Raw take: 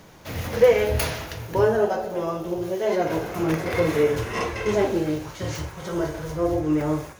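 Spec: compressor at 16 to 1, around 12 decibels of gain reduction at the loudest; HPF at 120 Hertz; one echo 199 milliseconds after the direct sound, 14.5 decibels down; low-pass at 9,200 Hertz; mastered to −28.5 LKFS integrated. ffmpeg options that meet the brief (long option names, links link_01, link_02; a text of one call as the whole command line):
ffmpeg -i in.wav -af "highpass=120,lowpass=9200,acompressor=threshold=-22dB:ratio=16,aecho=1:1:199:0.188" out.wav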